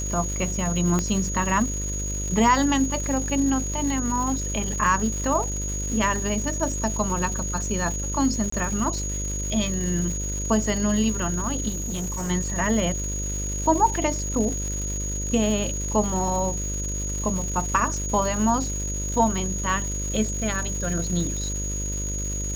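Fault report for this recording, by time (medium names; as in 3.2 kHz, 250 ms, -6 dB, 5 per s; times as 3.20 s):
buzz 50 Hz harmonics 12 -30 dBFS
crackle 370 per s -31 dBFS
whine 6.7 kHz -30 dBFS
0.99 s: pop -11 dBFS
8.50–8.52 s: dropout 24 ms
11.68–12.31 s: clipped -25.5 dBFS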